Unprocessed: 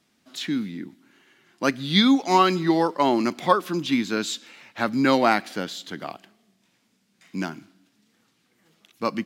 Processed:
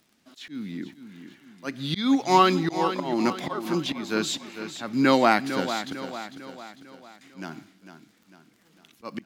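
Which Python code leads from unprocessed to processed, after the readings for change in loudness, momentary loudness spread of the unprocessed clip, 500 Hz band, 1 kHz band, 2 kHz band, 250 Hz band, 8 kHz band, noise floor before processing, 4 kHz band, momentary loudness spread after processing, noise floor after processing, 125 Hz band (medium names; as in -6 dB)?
-2.0 dB, 18 LU, -2.0 dB, -1.5 dB, -2.0 dB, -3.0 dB, -0.5 dB, -68 dBFS, -4.0 dB, 21 LU, -63 dBFS, -2.0 dB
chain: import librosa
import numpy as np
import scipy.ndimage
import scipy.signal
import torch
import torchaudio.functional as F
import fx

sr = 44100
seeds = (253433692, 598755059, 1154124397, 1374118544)

y = fx.auto_swell(x, sr, attack_ms=242.0)
y = fx.dmg_crackle(y, sr, seeds[0], per_s=48.0, level_db=-47.0)
y = fx.echo_feedback(y, sr, ms=450, feedback_pct=48, wet_db=-10.5)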